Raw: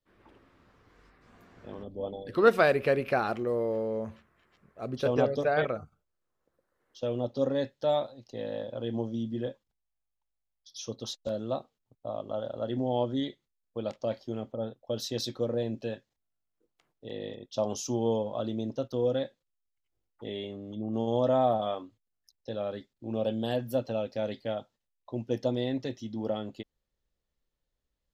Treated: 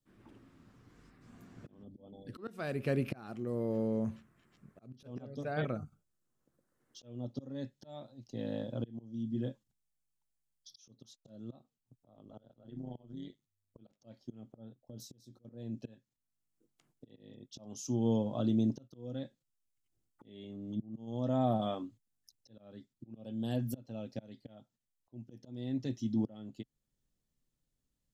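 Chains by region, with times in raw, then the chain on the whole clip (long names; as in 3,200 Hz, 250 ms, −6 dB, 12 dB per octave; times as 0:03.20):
0:12.08–0:14.01: downward compressor 4 to 1, threshold −31 dBFS + amplitude modulation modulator 100 Hz, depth 70%
0:14.82–0:15.45: downward compressor 5 to 1, threshold −40 dBFS + parametric band 2,300 Hz −13.5 dB 1.8 octaves + double-tracking delay 24 ms −14 dB
whole clip: parametric band 79 Hz −5.5 dB 2.2 octaves; volume swells 699 ms; octave-band graphic EQ 125/250/500/1,000/2,000/4,000/8,000 Hz +10/+6/−6/−4/−4/−3/+5 dB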